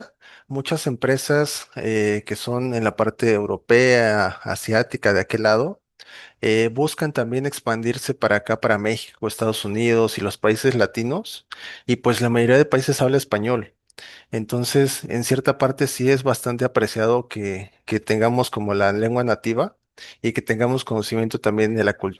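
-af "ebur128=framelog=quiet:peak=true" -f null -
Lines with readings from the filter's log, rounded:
Integrated loudness:
  I:         -20.7 LUFS
  Threshold: -31.1 LUFS
Loudness range:
  LRA:         2.8 LU
  Threshold: -40.9 LUFS
  LRA low:   -22.2 LUFS
  LRA high:  -19.4 LUFS
True peak:
  Peak:       -1.4 dBFS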